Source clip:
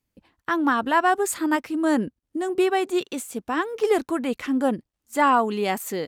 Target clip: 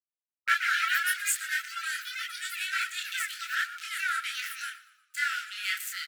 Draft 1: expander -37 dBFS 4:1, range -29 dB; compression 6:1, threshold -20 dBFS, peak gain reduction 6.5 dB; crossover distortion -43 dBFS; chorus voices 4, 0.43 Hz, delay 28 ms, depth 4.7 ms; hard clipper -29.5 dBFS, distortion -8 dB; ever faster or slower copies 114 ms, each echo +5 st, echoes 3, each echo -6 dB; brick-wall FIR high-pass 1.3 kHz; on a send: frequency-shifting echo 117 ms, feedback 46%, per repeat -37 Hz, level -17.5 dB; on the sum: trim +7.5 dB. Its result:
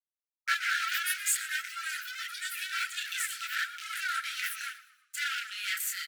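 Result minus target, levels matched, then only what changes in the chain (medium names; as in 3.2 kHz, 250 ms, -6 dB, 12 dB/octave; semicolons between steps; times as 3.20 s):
hard clipper: distortion +19 dB; crossover distortion: distortion -7 dB
change: crossover distortion -35.5 dBFS; change: hard clipper -19.5 dBFS, distortion -27 dB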